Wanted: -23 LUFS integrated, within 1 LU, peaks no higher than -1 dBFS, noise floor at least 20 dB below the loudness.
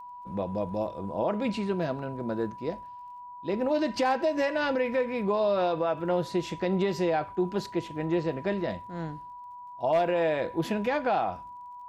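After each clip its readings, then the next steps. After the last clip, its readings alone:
ticks 29/s; steady tone 980 Hz; tone level -41 dBFS; loudness -29.0 LUFS; peak -17.5 dBFS; loudness target -23.0 LUFS
-> de-click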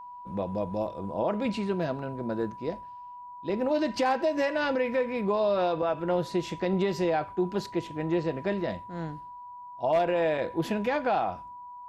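ticks 0/s; steady tone 980 Hz; tone level -41 dBFS
-> notch 980 Hz, Q 30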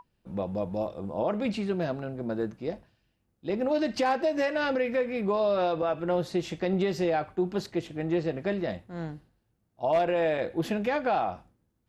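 steady tone none; loudness -29.0 LUFS; peak -17.0 dBFS; loudness target -23.0 LUFS
-> gain +6 dB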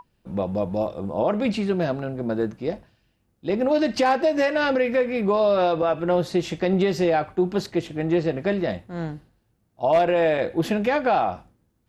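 loudness -23.0 LUFS; peak -11.0 dBFS; noise floor -69 dBFS

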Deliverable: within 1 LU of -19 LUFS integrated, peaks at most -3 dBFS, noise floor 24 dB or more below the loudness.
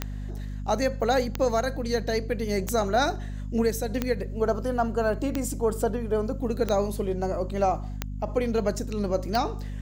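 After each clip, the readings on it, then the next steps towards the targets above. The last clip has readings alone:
clicks 8; hum 50 Hz; harmonics up to 250 Hz; hum level -31 dBFS; loudness -27.5 LUFS; peak -11.5 dBFS; loudness target -19.0 LUFS
-> de-click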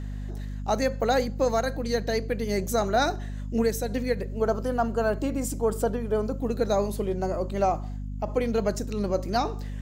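clicks 0; hum 50 Hz; harmonics up to 250 Hz; hum level -31 dBFS
-> notches 50/100/150/200/250 Hz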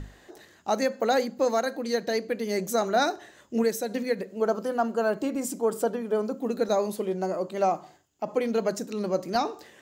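hum none; loudness -27.5 LUFS; peak -13.0 dBFS; loudness target -19.0 LUFS
-> gain +8.5 dB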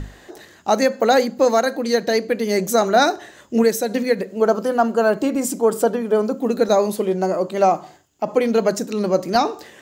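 loudness -19.0 LUFS; peak -4.5 dBFS; noise floor -48 dBFS

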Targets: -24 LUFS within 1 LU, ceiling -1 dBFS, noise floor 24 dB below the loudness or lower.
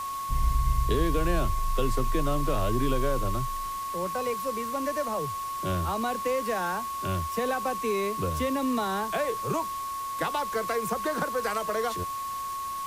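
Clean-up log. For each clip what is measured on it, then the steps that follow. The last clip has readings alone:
steady tone 1100 Hz; tone level -31 dBFS; noise floor -34 dBFS; noise floor target -53 dBFS; loudness -29.0 LUFS; peak -13.0 dBFS; loudness target -24.0 LUFS
-> notch 1100 Hz, Q 30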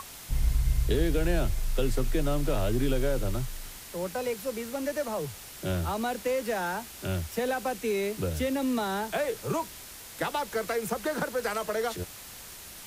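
steady tone none; noise floor -45 dBFS; noise floor target -55 dBFS
-> denoiser 10 dB, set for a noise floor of -45 dBFS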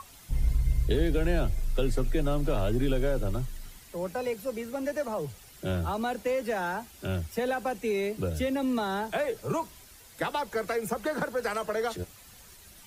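noise floor -52 dBFS; noise floor target -55 dBFS
-> denoiser 6 dB, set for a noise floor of -52 dBFS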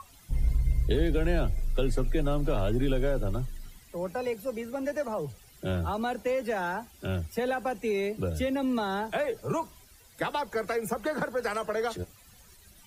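noise floor -56 dBFS; loudness -31.0 LUFS; peak -14.0 dBFS; loudness target -24.0 LUFS
-> gain +7 dB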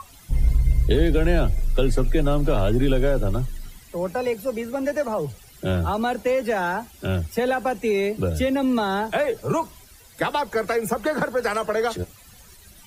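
loudness -24.0 LUFS; peak -7.0 dBFS; noise floor -49 dBFS

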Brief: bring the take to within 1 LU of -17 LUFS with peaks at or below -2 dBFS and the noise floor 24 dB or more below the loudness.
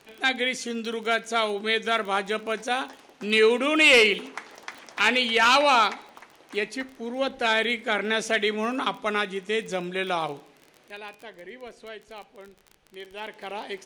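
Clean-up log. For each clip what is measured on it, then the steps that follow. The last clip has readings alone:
ticks 31/s; loudness -23.5 LUFS; peak -9.0 dBFS; loudness target -17.0 LUFS
-> de-click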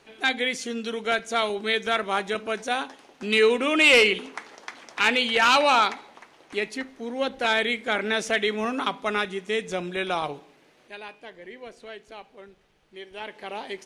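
ticks 0.072/s; loudness -23.5 LUFS; peak -6.5 dBFS; loudness target -17.0 LUFS
-> gain +6.5 dB; limiter -2 dBFS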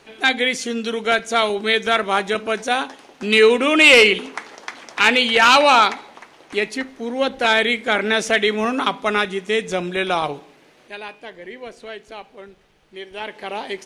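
loudness -17.0 LUFS; peak -2.0 dBFS; noise floor -52 dBFS

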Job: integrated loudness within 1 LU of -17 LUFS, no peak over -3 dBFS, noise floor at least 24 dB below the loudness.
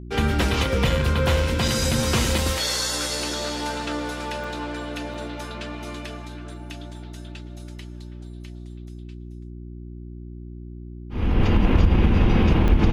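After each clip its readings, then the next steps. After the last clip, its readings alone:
dropouts 5; longest dropout 3.2 ms; hum 60 Hz; harmonics up to 360 Hz; hum level -34 dBFS; loudness -23.0 LUFS; peak -5.0 dBFS; loudness target -17.0 LUFS
-> interpolate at 1.68/2.38/4.44/5.14/12.68, 3.2 ms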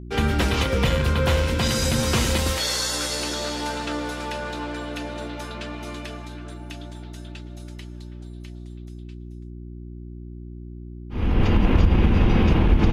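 dropouts 0; hum 60 Hz; harmonics up to 360 Hz; hum level -34 dBFS
-> de-hum 60 Hz, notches 6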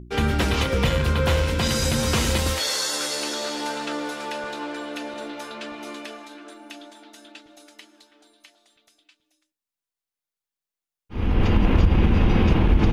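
hum none; loudness -23.0 LUFS; peak -5.5 dBFS; loudness target -17.0 LUFS
-> gain +6 dB; limiter -3 dBFS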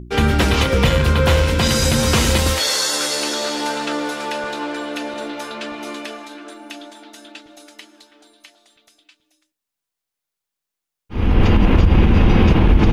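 loudness -17.5 LUFS; peak -3.0 dBFS; noise floor -84 dBFS

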